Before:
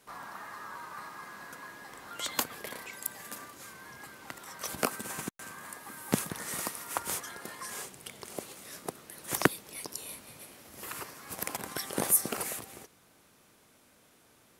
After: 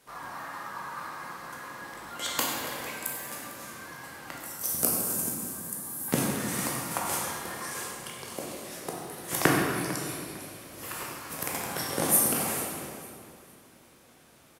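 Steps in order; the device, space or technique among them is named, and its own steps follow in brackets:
0:04.40–0:06.08: drawn EQ curve 190 Hz 0 dB, 2,300 Hz −13 dB, 12,000 Hz +11 dB
repeating echo 451 ms, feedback 29%, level −17 dB
stairwell (convolution reverb RT60 2.1 s, pre-delay 12 ms, DRR −3.5 dB)

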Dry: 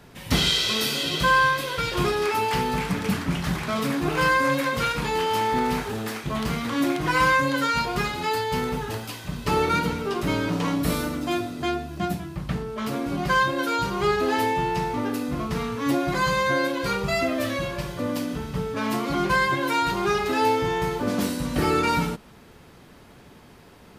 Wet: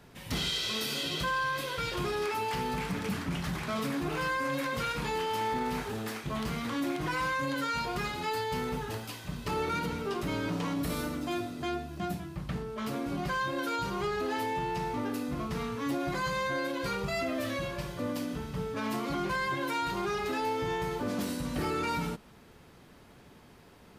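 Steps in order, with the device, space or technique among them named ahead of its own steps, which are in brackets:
soft clipper into limiter (soft clipping −13 dBFS, distortion −22 dB; brickwall limiter −18.5 dBFS, peak gain reduction 5 dB)
level −6 dB

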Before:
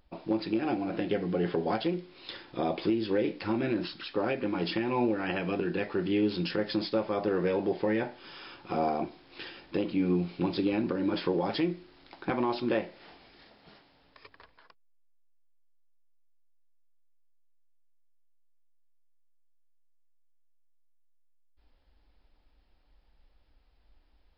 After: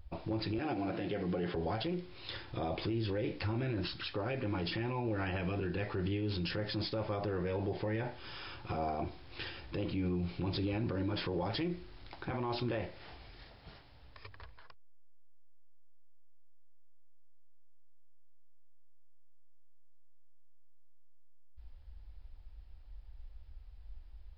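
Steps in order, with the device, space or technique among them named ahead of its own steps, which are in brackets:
0:00.58–0:01.55: high-pass filter 160 Hz 12 dB per octave
car stereo with a boomy subwoofer (low shelf with overshoot 140 Hz +13.5 dB, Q 1.5; brickwall limiter −27.5 dBFS, peak gain reduction 12 dB)

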